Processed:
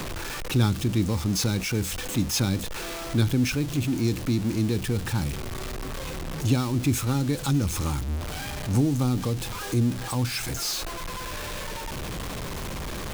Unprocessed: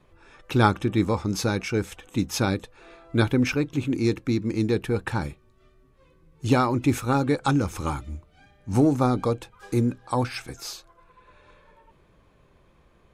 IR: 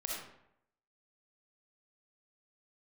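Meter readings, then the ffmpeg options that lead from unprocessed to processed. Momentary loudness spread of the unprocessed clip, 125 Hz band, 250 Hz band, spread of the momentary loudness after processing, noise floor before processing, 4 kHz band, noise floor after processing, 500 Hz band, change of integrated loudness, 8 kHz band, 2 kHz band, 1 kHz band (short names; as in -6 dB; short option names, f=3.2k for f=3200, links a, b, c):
13 LU, +2.0 dB, -1.5 dB, 10 LU, -60 dBFS, +4.5 dB, -34 dBFS, -6.0 dB, -2.0 dB, +7.0 dB, -1.5 dB, -6.5 dB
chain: -filter_complex "[0:a]aeval=exprs='val(0)+0.5*0.0501*sgn(val(0))':c=same,acrossover=split=260|3000[a][b][c];[b]acompressor=threshold=-36dB:ratio=3[d];[a][d][c]amix=inputs=3:normalize=0"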